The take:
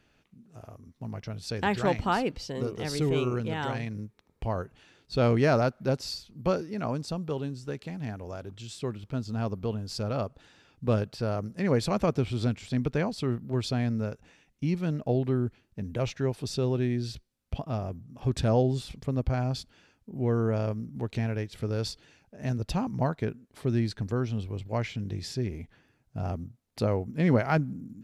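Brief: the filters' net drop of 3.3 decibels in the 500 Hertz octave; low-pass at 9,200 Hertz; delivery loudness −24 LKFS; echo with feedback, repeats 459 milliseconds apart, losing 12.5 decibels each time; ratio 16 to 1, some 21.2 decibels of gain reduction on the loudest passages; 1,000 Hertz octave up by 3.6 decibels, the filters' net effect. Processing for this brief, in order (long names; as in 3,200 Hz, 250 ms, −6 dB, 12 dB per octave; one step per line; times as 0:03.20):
low-pass filter 9,200 Hz
parametric band 500 Hz −6 dB
parametric band 1,000 Hz +7 dB
downward compressor 16 to 1, threshold −40 dBFS
repeating echo 459 ms, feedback 24%, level −12.5 dB
level +21.5 dB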